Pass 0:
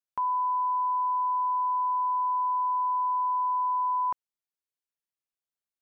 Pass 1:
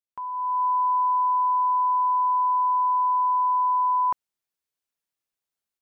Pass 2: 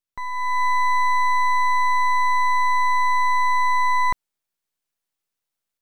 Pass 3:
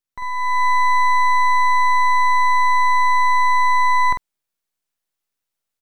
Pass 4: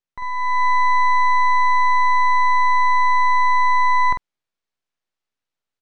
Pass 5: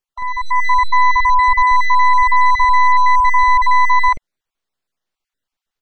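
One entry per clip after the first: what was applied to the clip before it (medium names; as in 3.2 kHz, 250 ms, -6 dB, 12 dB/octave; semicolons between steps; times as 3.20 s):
level rider gain up to 11.5 dB; trim -6.5 dB
half-wave rectifier; trim +7 dB
doubling 47 ms -5.5 dB
distance through air 99 m
random holes in the spectrogram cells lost 21%; trim +5 dB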